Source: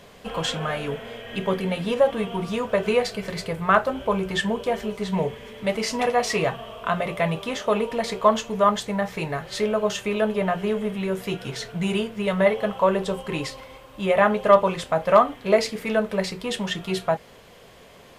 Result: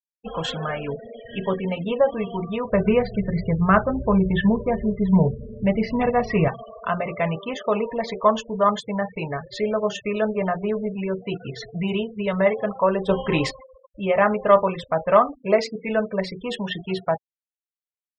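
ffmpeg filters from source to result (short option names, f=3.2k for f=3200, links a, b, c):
-filter_complex "[0:a]asettb=1/sr,asplit=3[a][b][c];[a]atrim=end=2.724[d];[b]atrim=start=2.72:end=6.48,asetpts=PTS-STARTPTS,afade=t=in:d=0.004:c=qsin,afade=t=out:st=3.756:d=0.004:c=qsin,bass=f=250:g=13,treble=f=4k:g=-11[e];[c]atrim=start=6.476[f];[d][e]acrossfade=d=0.004:c1=hsin:c2=qsin[g];[g][f]acrossfade=d=0.004:c1=qsin:c2=hsin,asplit=3[h][i][j];[h]atrim=end=13.092[k];[i]atrim=start=13.088:end=13.512,asetpts=PTS-STARTPTS,volume=7dB[l];[j]atrim=start=13.508[m];[k][l]acrossfade=d=0.004:c1=hsin:c2=hsin[n];[n][m]acrossfade=d=0.004:c1=hsin:c2=hsin,afftfilt=real='re*gte(hypot(re,im),0.0355)':imag='im*gte(hypot(re,im),0.0355)':win_size=1024:overlap=0.75,highshelf=f=5.5k:g=-6"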